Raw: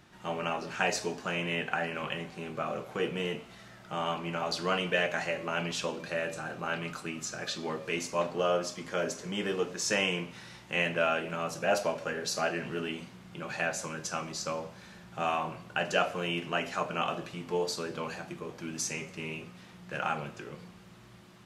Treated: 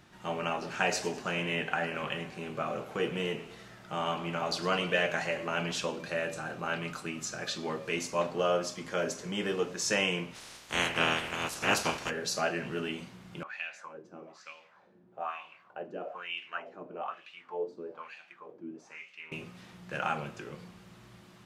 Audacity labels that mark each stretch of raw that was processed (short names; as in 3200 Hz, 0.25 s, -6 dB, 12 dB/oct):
0.510000	5.790000	warbling echo 0.107 s, feedback 48%, depth 154 cents, level -15.5 dB
10.340000	12.090000	spectral limiter ceiling under each frame's peak by 23 dB
13.430000	19.320000	wah 1.1 Hz 300–2800 Hz, Q 3